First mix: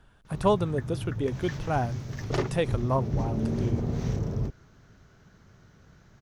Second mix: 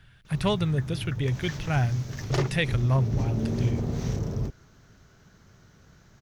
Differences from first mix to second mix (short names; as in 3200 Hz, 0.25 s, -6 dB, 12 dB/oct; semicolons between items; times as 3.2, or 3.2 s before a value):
speech: add graphic EQ 125/250/500/1000/2000/4000/8000 Hz +11/-5/-4/-7/+10/+4/-6 dB; master: add high shelf 4000 Hz +7 dB